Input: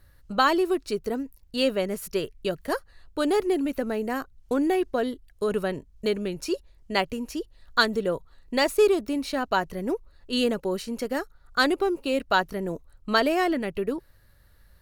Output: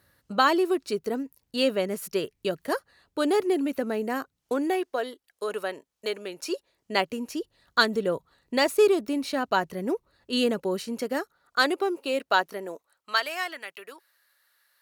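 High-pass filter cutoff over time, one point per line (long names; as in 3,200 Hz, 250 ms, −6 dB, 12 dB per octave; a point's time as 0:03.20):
0:04.06 160 Hz
0:05.00 520 Hz
0:06.23 520 Hz
0:07.39 130 Hz
0:10.87 130 Hz
0:11.62 350 Hz
0:12.48 350 Hz
0:13.23 1,200 Hz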